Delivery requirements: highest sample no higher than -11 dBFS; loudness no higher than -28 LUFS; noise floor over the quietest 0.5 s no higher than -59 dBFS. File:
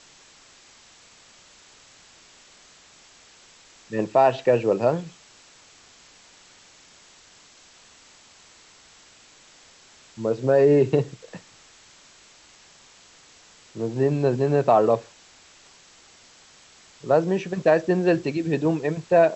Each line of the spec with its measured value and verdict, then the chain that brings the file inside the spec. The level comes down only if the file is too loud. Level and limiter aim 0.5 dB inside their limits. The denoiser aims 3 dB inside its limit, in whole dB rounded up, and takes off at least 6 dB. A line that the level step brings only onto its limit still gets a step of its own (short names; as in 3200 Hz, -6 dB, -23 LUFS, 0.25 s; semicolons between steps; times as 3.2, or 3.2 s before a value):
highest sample -6.5 dBFS: fail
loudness -22.0 LUFS: fail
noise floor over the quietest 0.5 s -53 dBFS: fail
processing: gain -6.5 dB